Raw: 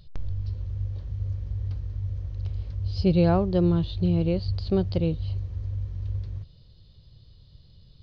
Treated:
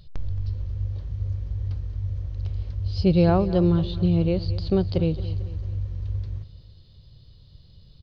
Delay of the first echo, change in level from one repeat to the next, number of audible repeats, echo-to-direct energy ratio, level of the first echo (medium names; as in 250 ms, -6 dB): 223 ms, -6.5 dB, 3, -15.0 dB, -16.0 dB